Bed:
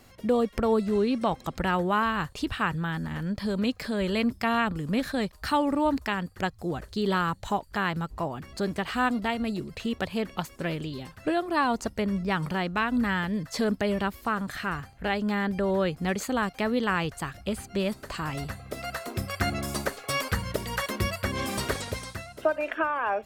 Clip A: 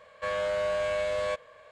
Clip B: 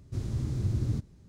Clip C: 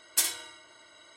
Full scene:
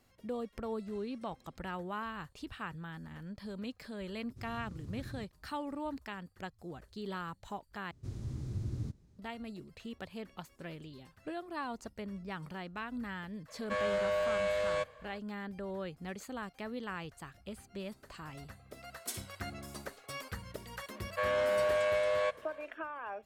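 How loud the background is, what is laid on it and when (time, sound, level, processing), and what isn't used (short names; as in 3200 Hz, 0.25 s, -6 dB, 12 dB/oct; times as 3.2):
bed -14.5 dB
4.24 add B -16 dB
7.91 replace with B -8.5 dB
13.48 add A -3 dB
18.9 add C -15.5 dB
20.95 add A -0.5 dB + tone controls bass -13 dB, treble -7 dB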